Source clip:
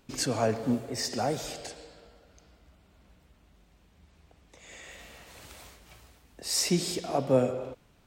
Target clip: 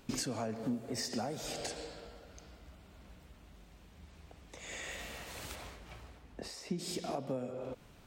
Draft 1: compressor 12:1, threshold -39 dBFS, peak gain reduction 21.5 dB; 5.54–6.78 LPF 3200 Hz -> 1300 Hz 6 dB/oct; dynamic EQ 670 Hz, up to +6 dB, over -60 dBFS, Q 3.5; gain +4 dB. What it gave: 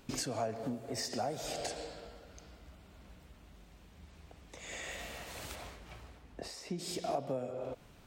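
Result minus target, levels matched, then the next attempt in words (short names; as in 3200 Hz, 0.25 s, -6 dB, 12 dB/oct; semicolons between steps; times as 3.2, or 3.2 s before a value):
250 Hz band -3.5 dB
compressor 12:1, threshold -39 dBFS, peak gain reduction 21.5 dB; 5.54–6.78 LPF 3200 Hz -> 1300 Hz 6 dB/oct; dynamic EQ 220 Hz, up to +6 dB, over -60 dBFS, Q 3.5; gain +4 dB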